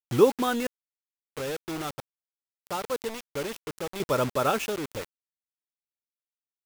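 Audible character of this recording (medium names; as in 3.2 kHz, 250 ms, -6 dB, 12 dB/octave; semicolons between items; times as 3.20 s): random-step tremolo 1.5 Hz, depth 95%; a quantiser's noise floor 6-bit, dither none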